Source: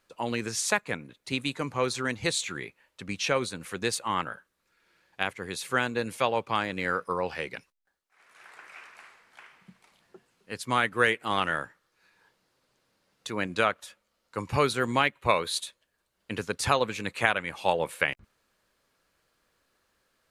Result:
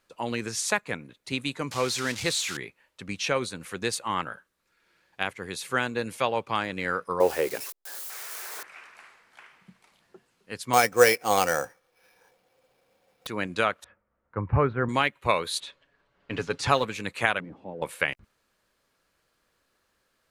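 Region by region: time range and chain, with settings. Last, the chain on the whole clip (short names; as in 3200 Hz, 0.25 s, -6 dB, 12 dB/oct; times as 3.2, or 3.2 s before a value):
1.71–2.57 switching spikes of -19 dBFS + LPF 6100 Hz
7.2–8.63 switching spikes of -26 dBFS + EQ curve 200 Hz 0 dB, 400 Hz +13 dB, 2600 Hz -3 dB
10.73–13.27 small resonant body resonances 520/730/2300 Hz, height 15 dB, ringing for 50 ms + sample-rate reducer 7500 Hz
13.84–14.89 LPF 1800 Hz 24 dB/oct + bell 80 Hz +12 dB 1.5 oct
15.6–16.85 G.711 law mismatch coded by mu + low-pass opened by the level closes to 2400 Hz, open at -20.5 dBFS + comb 7.1 ms, depth 43%
17.4–17.82 zero-crossing step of -29.5 dBFS + synth low-pass 260 Hz, resonance Q 2.2 + tilt +4 dB/oct
whole clip: dry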